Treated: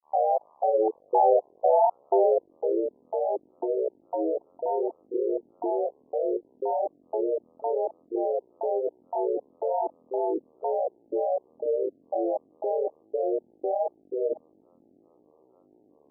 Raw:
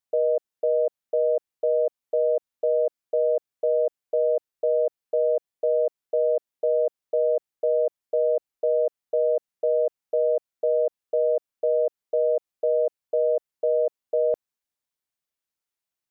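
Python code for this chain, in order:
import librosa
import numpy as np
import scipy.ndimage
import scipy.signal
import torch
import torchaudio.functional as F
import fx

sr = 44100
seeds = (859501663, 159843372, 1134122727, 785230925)

y = fx.dmg_buzz(x, sr, base_hz=60.0, harmonics=15, level_db=-58.0, tilt_db=0, odd_only=False)
y = fx.filter_sweep_bandpass(y, sr, from_hz=720.0, to_hz=360.0, start_s=0.82, end_s=2.88, q=3.9)
y = fx.granulator(y, sr, seeds[0], grain_ms=227.0, per_s=15.0, spray_ms=11.0, spread_st=7)
y = y * 10.0 ** (8.5 / 20.0)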